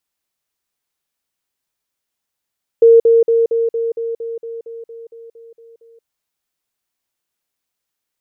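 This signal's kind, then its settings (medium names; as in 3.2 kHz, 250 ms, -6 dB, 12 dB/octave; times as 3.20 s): level ladder 460 Hz -4 dBFS, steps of -3 dB, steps 14, 0.18 s 0.05 s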